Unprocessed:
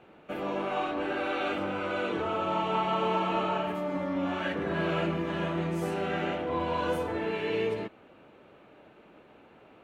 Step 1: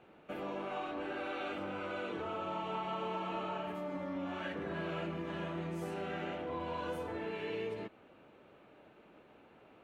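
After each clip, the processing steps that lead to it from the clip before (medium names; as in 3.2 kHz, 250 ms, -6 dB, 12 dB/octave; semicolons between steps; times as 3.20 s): compression 2:1, threshold -34 dBFS, peak gain reduction 6 dB; trim -5 dB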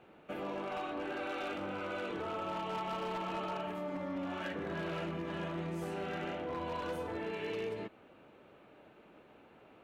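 wavefolder -32.5 dBFS; trim +1 dB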